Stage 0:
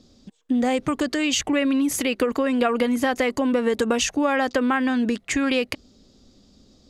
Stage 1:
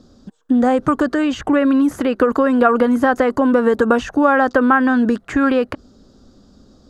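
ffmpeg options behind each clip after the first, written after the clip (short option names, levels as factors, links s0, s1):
-filter_complex "[0:a]highshelf=f=1800:t=q:w=3:g=-6,acrossover=split=2900[s0][s1];[s1]acompressor=threshold=0.00501:ratio=4:attack=1:release=60[s2];[s0][s2]amix=inputs=2:normalize=0,volume=2.11"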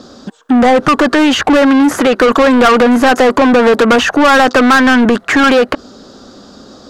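-filter_complex "[0:a]asplit=2[s0][s1];[s1]highpass=f=720:p=1,volume=22.4,asoftclip=type=tanh:threshold=0.891[s2];[s0][s2]amix=inputs=2:normalize=0,lowpass=f=4400:p=1,volume=0.501"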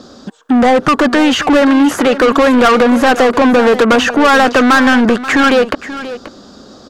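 -af "aecho=1:1:533:0.2,volume=0.891"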